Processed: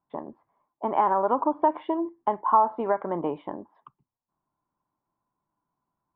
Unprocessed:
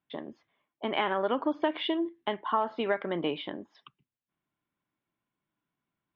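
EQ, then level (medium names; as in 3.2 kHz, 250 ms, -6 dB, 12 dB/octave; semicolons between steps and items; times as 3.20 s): resonant low-pass 960 Hz, resonance Q 3.8; bass shelf 69 Hz +10 dB; 0.0 dB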